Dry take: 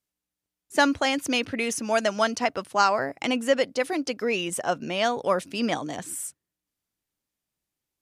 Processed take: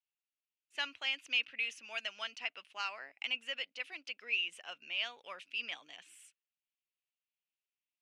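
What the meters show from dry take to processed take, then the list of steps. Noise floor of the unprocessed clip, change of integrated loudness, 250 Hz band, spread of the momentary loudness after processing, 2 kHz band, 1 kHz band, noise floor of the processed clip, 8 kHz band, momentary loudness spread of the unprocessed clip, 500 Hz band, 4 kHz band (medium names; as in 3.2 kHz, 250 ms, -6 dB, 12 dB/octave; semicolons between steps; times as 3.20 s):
under -85 dBFS, -12.0 dB, -35.0 dB, 13 LU, -8.0 dB, -22.0 dB, under -85 dBFS, -23.0 dB, 7 LU, -28.0 dB, -6.0 dB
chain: band-pass filter 2.7 kHz, Q 4.7; trim -1.5 dB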